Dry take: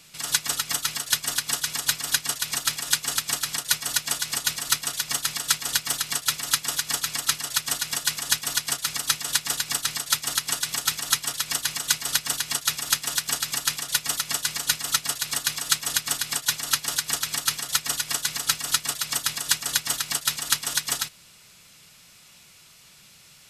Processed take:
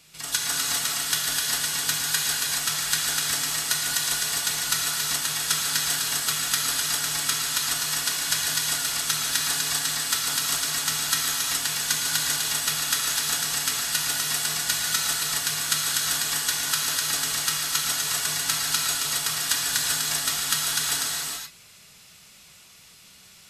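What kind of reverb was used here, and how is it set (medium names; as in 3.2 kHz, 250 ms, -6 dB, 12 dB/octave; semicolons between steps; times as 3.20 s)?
gated-style reverb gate 450 ms flat, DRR -3.5 dB; trim -4 dB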